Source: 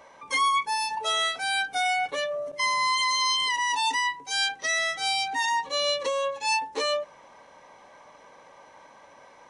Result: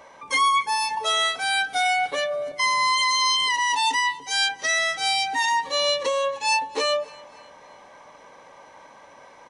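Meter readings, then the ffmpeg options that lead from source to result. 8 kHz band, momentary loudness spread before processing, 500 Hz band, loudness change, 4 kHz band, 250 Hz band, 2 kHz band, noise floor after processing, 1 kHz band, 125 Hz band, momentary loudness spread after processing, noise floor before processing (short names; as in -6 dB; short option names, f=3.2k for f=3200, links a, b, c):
+3.5 dB, 5 LU, +3.5 dB, +3.5 dB, +3.5 dB, +3.5 dB, +3.5 dB, -49 dBFS, +3.5 dB, n/a, 5 LU, -53 dBFS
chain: -af "aecho=1:1:280|560|840:0.0708|0.034|0.0163,volume=3.5dB"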